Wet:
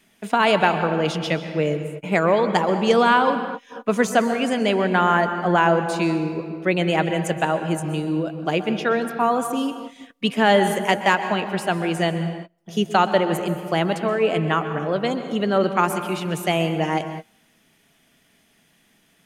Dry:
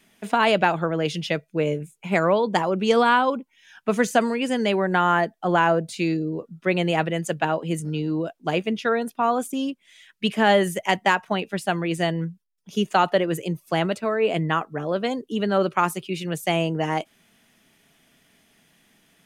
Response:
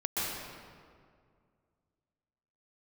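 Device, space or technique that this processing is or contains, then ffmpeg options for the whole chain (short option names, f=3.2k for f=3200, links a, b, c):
keyed gated reverb: -filter_complex "[0:a]asplit=3[a][b][c];[1:a]atrim=start_sample=2205[d];[b][d]afir=irnorm=-1:irlink=0[e];[c]apad=whole_len=849304[f];[e][f]sidechaingate=range=-31dB:threshold=-48dB:ratio=16:detection=peak,volume=-14dB[g];[a][g]amix=inputs=2:normalize=0"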